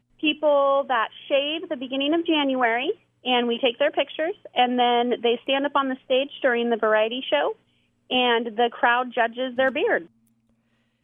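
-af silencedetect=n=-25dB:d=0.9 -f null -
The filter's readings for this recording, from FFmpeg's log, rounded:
silence_start: 9.98
silence_end: 11.04 | silence_duration: 1.06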